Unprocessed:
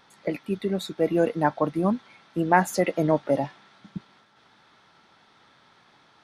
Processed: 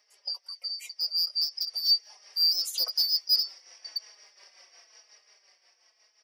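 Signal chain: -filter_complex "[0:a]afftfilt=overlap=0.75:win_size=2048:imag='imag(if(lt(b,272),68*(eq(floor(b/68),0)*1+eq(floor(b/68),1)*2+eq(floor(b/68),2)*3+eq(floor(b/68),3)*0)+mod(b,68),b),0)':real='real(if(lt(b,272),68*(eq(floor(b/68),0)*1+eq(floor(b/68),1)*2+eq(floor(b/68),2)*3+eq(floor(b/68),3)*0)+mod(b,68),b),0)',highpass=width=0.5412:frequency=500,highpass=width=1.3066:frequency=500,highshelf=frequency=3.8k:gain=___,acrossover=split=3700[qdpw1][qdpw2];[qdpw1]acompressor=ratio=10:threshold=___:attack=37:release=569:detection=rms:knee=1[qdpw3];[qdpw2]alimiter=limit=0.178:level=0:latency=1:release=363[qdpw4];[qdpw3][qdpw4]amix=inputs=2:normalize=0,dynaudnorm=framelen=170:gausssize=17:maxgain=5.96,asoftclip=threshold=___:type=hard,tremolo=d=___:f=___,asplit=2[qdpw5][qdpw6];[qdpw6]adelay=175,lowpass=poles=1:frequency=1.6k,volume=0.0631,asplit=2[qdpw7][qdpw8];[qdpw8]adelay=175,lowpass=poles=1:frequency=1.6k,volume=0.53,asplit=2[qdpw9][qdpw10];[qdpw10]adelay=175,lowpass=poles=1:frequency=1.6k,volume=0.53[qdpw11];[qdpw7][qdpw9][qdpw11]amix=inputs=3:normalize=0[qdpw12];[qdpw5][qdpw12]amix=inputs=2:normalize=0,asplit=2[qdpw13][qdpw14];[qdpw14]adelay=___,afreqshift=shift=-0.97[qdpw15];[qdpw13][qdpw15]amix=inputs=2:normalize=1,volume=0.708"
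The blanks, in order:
2.5, 0.00794, 0.237, 0.62, 5.6, 4.3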